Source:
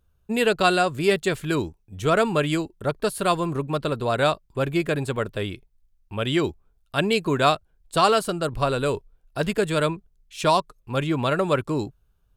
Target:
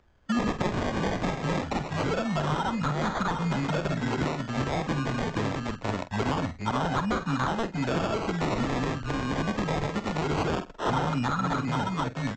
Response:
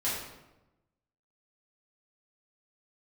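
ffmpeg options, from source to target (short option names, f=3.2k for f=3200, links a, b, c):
-filter_complex "[0:a]asplit=2[a][b];[b]aecho=0:1:50|477:0.178|0.562[c];[a][c]amix=inputs=2:normalize=0,afftfilt=real='re*(1-between(b*sr/4096,290,1300))':imag='im*(1-between(b*sr/4096,290,1300))':win_size=4096:overlap=0.75,acompressor=threshold=-28dB:ratio=4,bass=f=250:g=-1,treble=f=4k:g=14,aresample=16000,acrusher=samples=9:mix=1:aa=0.000001:lfo=1:lforange=5.4:lforate=0.24,aresample=44100,acrossover=split=180|1200[d][e][f];[d]acompressor=threshold=-33dB:ratio=4[g];[e]acompressor=threshold=-34dB:ratio=4[h];[f]acompressor=threshold=-45dB:ratio=4[i];[g][h][i]amix=inputs=3:normalize=0,asplit=2[j][k];[k]highpass=f=720:p=1,volume=15dB,asoftclip=type=tanh:threshold=-19.5dB[l];[j][l]amix=inputs=2:normalize=0,lowpass=f=1.7k:p=1,volume=-6dB,asplit=2[m][n];[n]adelay=47,volume=-12dB[o];[m][o]amix=inputs=2:normalize=0,adynamicequalizer=threshold=0.00708:dfrequency=660:dqfactor=0.95:tfrequency=660:tqfactor=0.95:attack=5:release=100:ratio=0.375:range=2:mode=cutabove:tftype=bell,volume=6dB"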